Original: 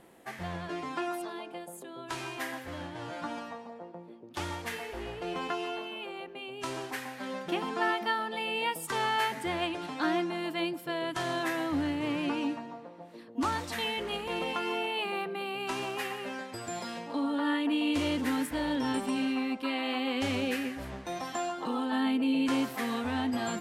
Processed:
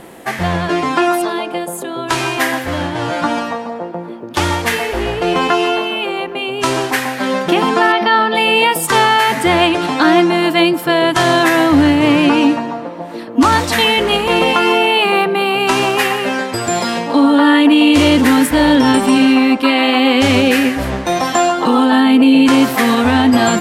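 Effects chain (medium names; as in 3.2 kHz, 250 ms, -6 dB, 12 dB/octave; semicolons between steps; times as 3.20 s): 7.92–8.35 s: Savitzky-Golay filter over 15 samples; feedback echo behind a band-pass 408 ms, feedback 73%, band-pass 730 Hz, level -21.5 dB; loudness maximiser +21.5 dB; trim -1 dB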